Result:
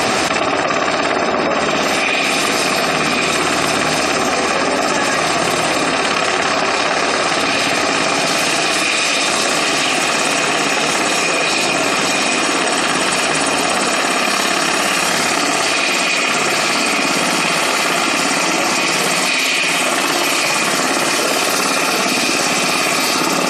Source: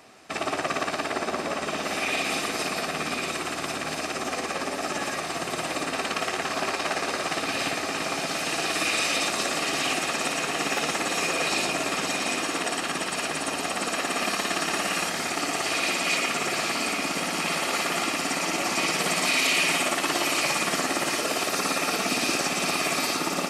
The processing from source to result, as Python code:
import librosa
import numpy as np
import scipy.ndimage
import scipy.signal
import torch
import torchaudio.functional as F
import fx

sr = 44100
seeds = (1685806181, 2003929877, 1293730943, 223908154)

y = fx.spec_gate(x, sr, threshold_db=-25, keep='strong')
y = fx.low_shelf(y, sr, hz=150.0, db=-3.0)
y = fx.env_flatten(y, sr, amount_pct=100)
y = y * librosa.db_to_amplitude(6.0)